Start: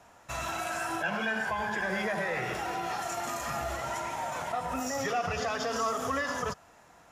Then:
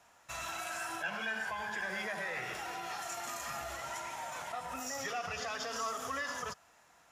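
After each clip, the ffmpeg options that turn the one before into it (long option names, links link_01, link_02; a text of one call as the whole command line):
ffmpeg -i in.wav -af "tiltshelf=frequency=910:gain=-5,volume=-7.5dB" out.wav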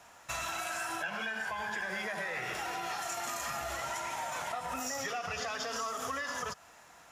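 ffmpeg -i in.wav -af "acompressor=threshold=-41dB:ratio=6,volume=7.5dB" out.wav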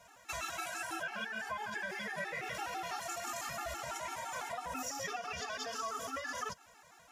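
ffmpeg -i in.wav -af "afftfilt=real='re*gt(sin(2*PI*6*pts/sr)*(1-2*mod(floor(b*sr/1024/230),2)),0)':imag='im*gt(sin(2*PI*6*pts/sr)*(1-2*mod(floor(b*sr/1024/230),2)),0)':win_size=1024:overlap=0.75" out.wav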